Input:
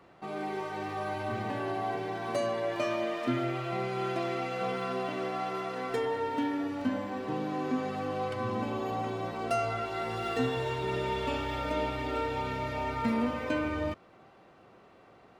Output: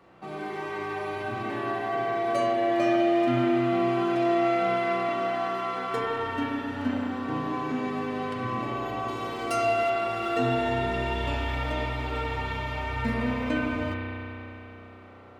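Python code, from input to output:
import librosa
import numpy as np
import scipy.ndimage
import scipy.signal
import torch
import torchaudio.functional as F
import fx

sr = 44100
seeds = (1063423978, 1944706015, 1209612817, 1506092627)

y = fx.high_shelf(x, sr, hz=4100.0, db=9.5, at=(9.08, 9.9))
y = fx.rev_spring(y, sr, rt60_s=3.4, pass_ms=(32,), chirp_ms=70, drr_db=-4.0)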